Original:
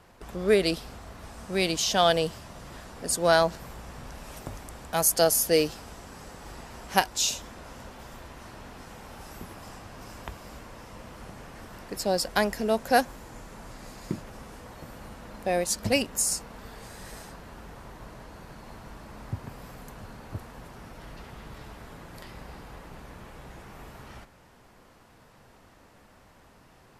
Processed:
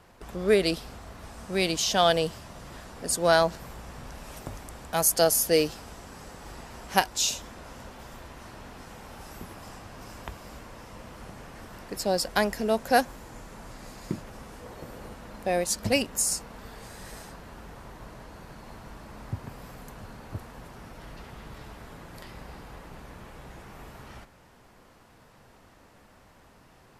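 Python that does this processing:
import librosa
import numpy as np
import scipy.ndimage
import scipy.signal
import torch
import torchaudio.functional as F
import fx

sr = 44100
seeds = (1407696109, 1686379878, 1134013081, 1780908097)

y = fx.peak_eq(x, sr, hz=430.0, db=6.5, octaves=0.77, at=(14.61, 15.14))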